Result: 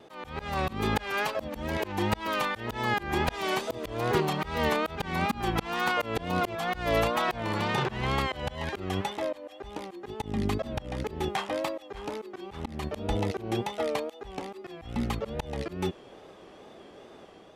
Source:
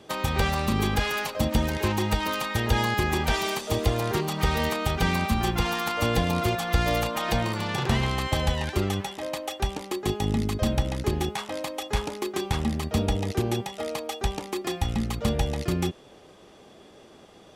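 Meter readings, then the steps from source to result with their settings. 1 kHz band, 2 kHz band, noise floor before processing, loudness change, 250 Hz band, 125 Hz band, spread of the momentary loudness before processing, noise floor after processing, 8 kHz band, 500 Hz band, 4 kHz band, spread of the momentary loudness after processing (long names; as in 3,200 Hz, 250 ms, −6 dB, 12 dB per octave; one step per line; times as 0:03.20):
−1.5 dB, −2.0 dB, −51 dBFS, −4.0 dB, −5.0 dB, −8.0 dB, 6 LU, −51 dBFS, −9.5 dB, −2.0 dB, −5.5 dB, 13 LU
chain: high-shelf EQ 2,100 Hz −3 dB
automatic gain control gain up to 3 dB
tape wow and flutter 81 cents
volume swells 242 ms
bass and treble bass −5 dB, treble −6 dB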